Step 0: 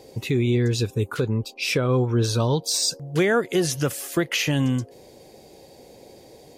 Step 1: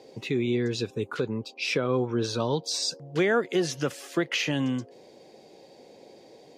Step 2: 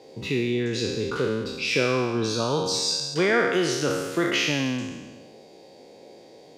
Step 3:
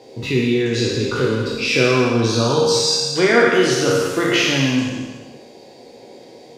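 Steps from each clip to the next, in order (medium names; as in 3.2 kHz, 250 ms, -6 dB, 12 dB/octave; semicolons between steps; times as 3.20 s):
three-band isolator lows -18 dB, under 150 Hz, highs -17 dB, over 6.6 kHz; trim -3 dB
spectral sustain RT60 1.29 s
reverberation, pre-delay 3 ms, DRR 1 dB; trim +4.5 dB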